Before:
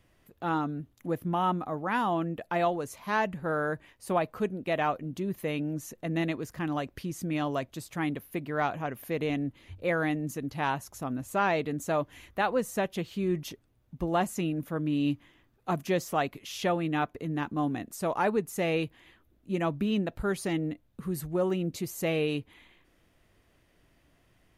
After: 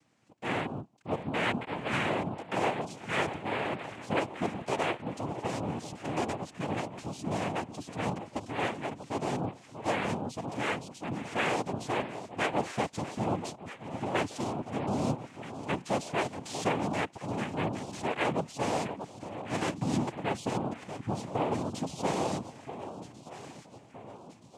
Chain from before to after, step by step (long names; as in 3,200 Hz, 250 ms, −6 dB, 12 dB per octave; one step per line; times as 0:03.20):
0:18.85–0:19.74: samples sorted by size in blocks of 64 samples
delay that swaps between a low-pass and a high-pass 637 ms, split 870 Hz, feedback 70%, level −10 dB
cochlear-implant simulation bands 4
level −2.5 dB